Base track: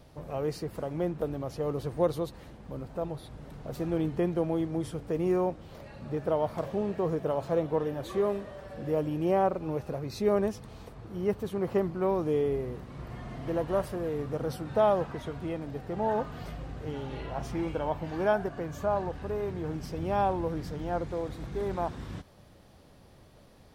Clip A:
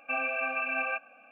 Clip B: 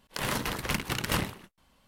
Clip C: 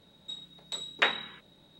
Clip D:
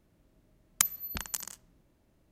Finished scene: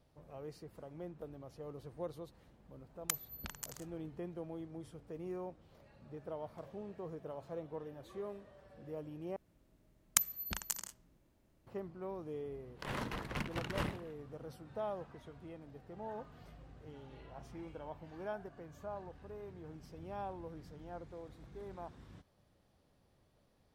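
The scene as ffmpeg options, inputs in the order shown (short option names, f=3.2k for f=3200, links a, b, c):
-filter_complex "[4:a]asplit=2[a][b];[0:a]volume=-16dB[c];[a]equalizer=f=8.6k:w=0.59:g=-3.5[d];[2:a]lowpass=f=1.9k:p=1[e];[c]asplit=2[f][g];[f]atrim=end=9.364[h];[b]atrim=end=2.31,asetpts=PTS-STARTPTS,volume=-3.5dB[i];[g]atrim=start=11.666[j];[d]atrim=end=2.31,asetpts=PTS-STARTPTS,volume=-8dB,afade=t=in:d=0.004:c=hsin,afade=t=out:st=2.306:d=0.004:c=hsin,adelay=2290[k];[e]atrim=end=1.87,asetpts=PTS-STARTPTS,volume=-7.5dB,afade=t=in:d=0.004:c=hsin,afade=t=out:st=1.866:d=0.004:c=hsin,adelay=12660[l];[h][i]acrossfade=d=0.004:c1=hsin:c2=hsin[m];[m][j]acrossfade=d=0.004:c1=hsin:c2=hsin[n];[n][k][l]amix=inputs=3:normalize=0"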